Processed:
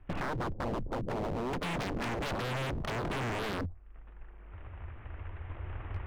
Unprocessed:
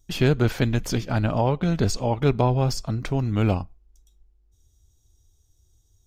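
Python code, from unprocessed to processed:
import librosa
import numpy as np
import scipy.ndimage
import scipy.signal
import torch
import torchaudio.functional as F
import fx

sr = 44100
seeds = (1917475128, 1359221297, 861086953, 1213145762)

y = fx.cvsd(x, sr, bps=16000)
y = fx.recorder_agc(y, sr, target_db=-14.0, rise_db_per_s=8.5, max_gain_db=30)
y = fx.env_lowpass_down(y, sr, base_hz=310.0, full_db=-21.0)
y = scipy.signal.sosfilt(scipy.signal.butter(2, 1400.0, 'lowpass', fs=sr, output='sos'), y)
y = fx.env_lowpass_down(y, sr, base_hz=550.0, full_db=-22.0)
y = fx.peak_eq(y, sr, hz=87.0, db=9.0, octaves=0.33)
y = fx.leveller(y, sr, passes=3, at=(1.53, 3.61))
y = 10.0 ** (-29.0 / 20.0) * (np.abs((y / 10.0 ** (-29.0 / 20.0) + 3.0) % 4.0 - 2.0) - 1.0)
y = fx.band_squash(y, sr, depth_pct=40)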